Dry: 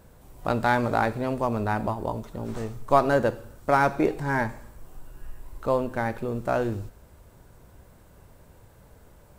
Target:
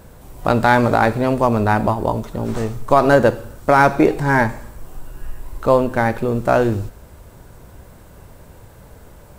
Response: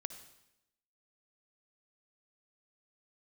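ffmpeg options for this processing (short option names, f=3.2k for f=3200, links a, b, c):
-af "alimiter=level_in=11dB:limit=-1dB:release=50:level=0:latency=1,volume=-1dB"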